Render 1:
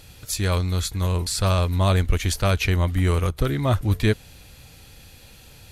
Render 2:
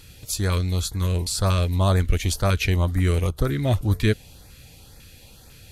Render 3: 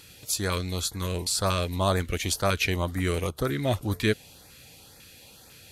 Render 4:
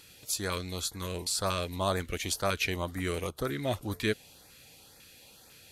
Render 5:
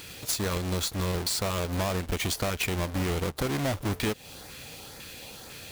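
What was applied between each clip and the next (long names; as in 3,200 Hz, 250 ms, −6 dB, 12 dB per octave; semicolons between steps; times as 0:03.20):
auto-filter notch saw up 2 Hz 630–3,300 Hz
high-pass filter 260 Hz 6 dB per octave
parametric band 88 Hz −4.5 dB 2.3 octaves; level −4 dB
each half-wave held at its own peak; in parallel at +2.5 dB: brickwall limiter −23.5 dBFS, peak gain reduction 9.5 dB; on the sum: downward compressor, threshold −27 dBFS, peak gain reduction 10.5 dB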